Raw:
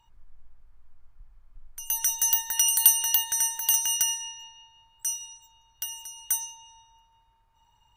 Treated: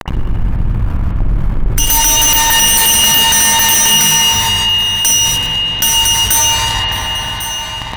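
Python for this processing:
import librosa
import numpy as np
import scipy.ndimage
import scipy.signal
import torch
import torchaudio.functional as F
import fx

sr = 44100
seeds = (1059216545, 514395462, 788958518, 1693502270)

p1 = fx.highpass(x, sr, hz=95.0, slope=6)
p2 = fx.bass_treble(p1, sr, bass_db=15, treble_db=-8)
p3 = fx.fuzz(p2, sr, gain_db=49.0, gate_db=-52.0)
p4 = p3 + fx.echo_single(p3, sr, ms=1099, db=-21.5, dry=0)
p5 = fx.rev_spring(p4, sr, rt60_s=3.8, pass_ms=(44, 52), chirp_ms=30, drr_db=0.5)
p6 = fx.env_flatten(p5, sr, amount_pct=50)
y = p6 * 10.0 ** (3.0 / 20.0)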